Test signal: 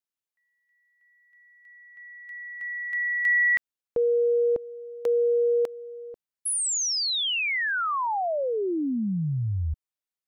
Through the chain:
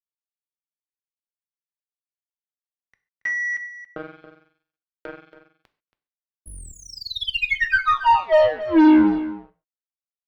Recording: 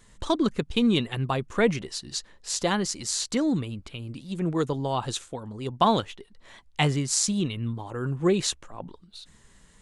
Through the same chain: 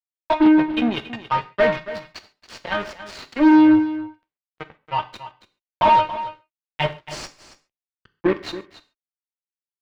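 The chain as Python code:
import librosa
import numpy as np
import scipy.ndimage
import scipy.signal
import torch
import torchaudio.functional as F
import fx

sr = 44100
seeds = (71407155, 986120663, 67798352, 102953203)

p1 = scipy.signal.sosfilt(scipy.signal.butter(2, 52.0, 'highpass', fs=sr, output='sos'), x)
p2 = fx.noise_reduce_blind(p1, sr, reduce_db=28)
p3 = fx.high_shelf(p2, sr, hz=7700.0, db=9.5)
p4 = fx.level_steps(p3, sr, step_db=11)
p5 = p3 + (p4 * librosa.db_to_amplitude(-0.5))
p6 = fx.comb_fb(p5, sr, f0_hz=310.0, decay_s=0.91, harmonics='all', damping=0.6, mix_pct=100)
p7 = fx.fuzz(p6, sr, gain_db=47.0, gate_db=-53.0)
p8 = fx.air_absorb(p7, sr, metres=350.0)
p9 = p8 + fx.echo_single(p8, sr, ms=278, db=-14.0, dry=0)
p10 = fx.rev_gated(p9, sr, seeds[0], gate_ms=160, shape='falling', drr_db=10.5)
y = p10 * librosa.db_to_amplitude(3.0)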